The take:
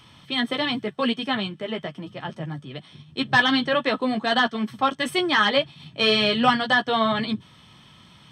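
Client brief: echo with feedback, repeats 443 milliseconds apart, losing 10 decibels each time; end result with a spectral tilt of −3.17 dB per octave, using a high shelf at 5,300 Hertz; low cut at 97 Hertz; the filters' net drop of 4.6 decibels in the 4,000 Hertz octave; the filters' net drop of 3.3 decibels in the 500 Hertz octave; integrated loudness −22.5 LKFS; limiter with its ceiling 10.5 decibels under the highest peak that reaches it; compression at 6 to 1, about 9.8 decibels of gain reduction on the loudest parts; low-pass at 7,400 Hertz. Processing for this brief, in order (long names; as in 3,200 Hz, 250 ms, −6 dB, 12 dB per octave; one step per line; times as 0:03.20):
high-pass filter 97 Hz
low-pass filter 7,400 Hz
parametric band 500 Hz −4 dB
parametric band 4,000 Hz −4.5 dB
high-shelf EQ 5,300 Hz −4.5 dB
downward compressor 6 to 1, threshold −25 dBFS
brickwall limiter −24 dBFS
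repeating echo 443 ms, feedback 32%, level −10 dB
level +11 dB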